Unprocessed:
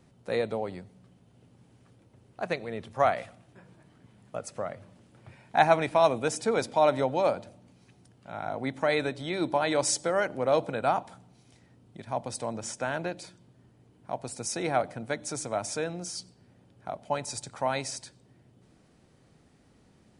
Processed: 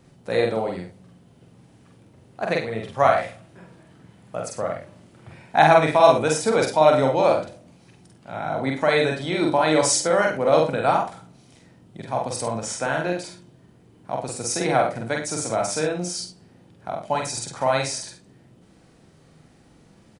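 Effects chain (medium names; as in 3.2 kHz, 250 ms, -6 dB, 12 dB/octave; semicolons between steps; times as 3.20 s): doubling 45 ms -2.5 dB; early reflections 51 ms -8.5 dB, 71 ms -13 dB; trim +5 dB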